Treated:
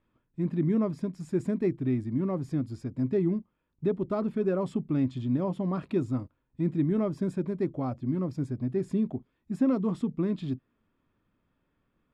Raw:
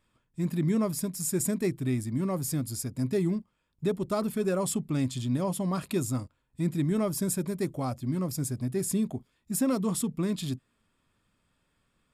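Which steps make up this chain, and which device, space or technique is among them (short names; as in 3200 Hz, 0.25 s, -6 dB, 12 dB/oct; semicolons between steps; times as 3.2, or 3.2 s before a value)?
phone in a pocket (LPF 3400 Hz 12 dB/oct; bell 310 Hz +5 dB 0.92 oct; high shelf 2500 Hz -9 dB); gain -1.5 dB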